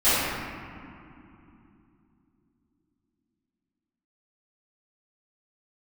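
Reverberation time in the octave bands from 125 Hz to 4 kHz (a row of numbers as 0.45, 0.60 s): 4.1, 4.3, 3.0, 2.8, 2.2, 1.4 s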